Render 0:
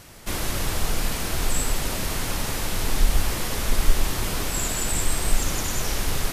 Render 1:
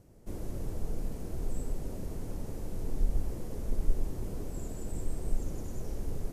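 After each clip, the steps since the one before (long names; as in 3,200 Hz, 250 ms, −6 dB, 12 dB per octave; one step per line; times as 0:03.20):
drawn EQ curve 460 Hz 0 dB, 1,200 Hz −17 dB, 3,600 Hz −23 dB, 6,500 Hz −16 dB
level −8.5 dB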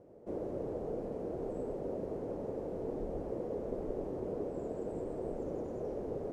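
resonant band-pass 510 Hz, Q 1.8
level +10.5 dB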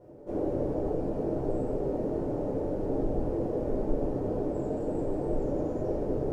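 rectangular room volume 250 cubic metres, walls furnished, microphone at 4.6 metres
level −1.5 dB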